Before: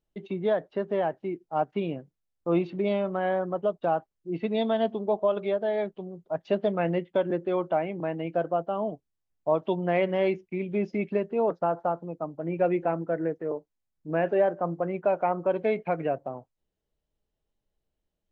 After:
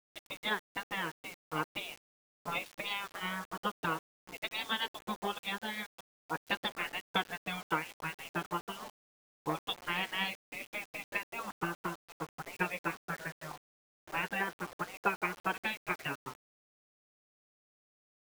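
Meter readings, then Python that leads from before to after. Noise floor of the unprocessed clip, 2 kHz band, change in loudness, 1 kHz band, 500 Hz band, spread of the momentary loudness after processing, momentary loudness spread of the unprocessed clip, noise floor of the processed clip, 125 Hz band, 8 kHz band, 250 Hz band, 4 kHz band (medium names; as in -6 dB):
-83 dBFS, +3.5 dB, -9.0 dB, -6.5 dB, -19.5 dB, 10 LU, 9 LU, under -85 dBFS, -11.5 dB, no reading, -13.5 dB, +7.5 dB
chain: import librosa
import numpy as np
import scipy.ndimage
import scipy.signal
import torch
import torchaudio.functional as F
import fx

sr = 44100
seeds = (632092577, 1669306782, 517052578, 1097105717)

y = fx.transient(x, sr, attack_db=7, sustain_db=-2)
y = fx.tilt_shelf(y, sr, db=-7.0, hz=670.0)
y = fx.spec_gate(y, sr, threshold_db=-15, keep='weak')
y = fx.quant_dither(y, sr, seeds[0], bits=8, dither='none')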